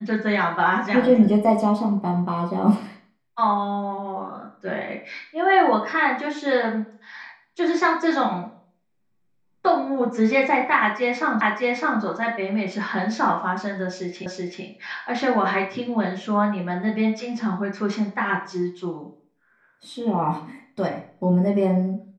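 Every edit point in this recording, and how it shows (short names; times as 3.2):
11.41 repeat of the last 0.61 s
14.26 repeat of the last 0.38 s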